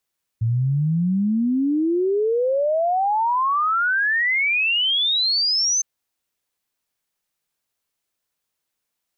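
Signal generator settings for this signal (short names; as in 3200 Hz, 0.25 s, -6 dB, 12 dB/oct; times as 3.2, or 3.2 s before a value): log sweep 110 Hz -> 6300 Hz 5.41 s -17 dBFS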